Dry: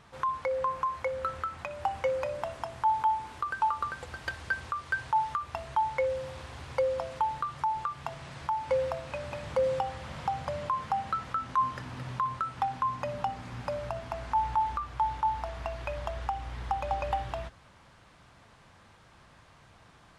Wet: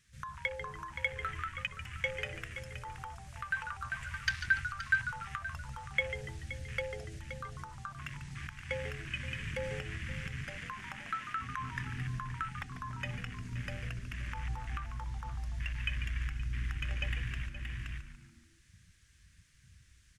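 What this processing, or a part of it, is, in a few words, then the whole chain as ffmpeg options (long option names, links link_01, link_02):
ducked delay: -filter_complex "[0:a]firequalizer=gain_entry='entry(100,0);entry(800,-26);entry(1700,4);entry(4000,4);entry(6100,13)':delay=0.05:min_phase=1,afwtdn=0.00708,asettb=1/sr,asplit=3[link_01][link_02][link_03];[link_01]atrim=end=10.444[link_04];[link_02]atrim=start=10.44:end=11.39,asetpts=PTS-STARTPTS,afade=type=in:duration=0.004:curve=qsin,afade=type=out:start_time=0.946:duration=0.004:curve=qsin,highpass=240[link_05];[link_03]atrim=start=11.386[link_06];[link_04][link_05]acrossfade=duration=0.004:curve1=hsin:curve2=qsin[link_07];[link_07][link_06]acrossfade=duration=0.004:curve1=qsin:curve2=hsin,asplit=3[link_08][link_09][link_10];[link_09]adelay=523,volume=-3dB[link_11];[link_10]apad=whole_len=917680[link_12];[link_11][link_12]sidechaincompress=threshold=-54dB:ratio=8:attack=16:release=204[link_13];[link_08][link_13]amix=inputs=2:normalize=0,asplit=5[link_14][link_15][link_16][link_17][link_18];[link_15]adelay=144,afreqshift=-98,volume=-10.5dB[link_19];[link_16]adelay=288,afreqshift=-196,volume=-18dB[link_20];[link_17]adelay=432,afreqshift=-294,volume=-25.6dB[link_21];[link_18]adelay=576,afreqshift=-392,volume=-33.1dB[link_22];[link_14][link_19][link_20][link_21][link_22]amix=inputs=5:normalize=0,volume=3dB"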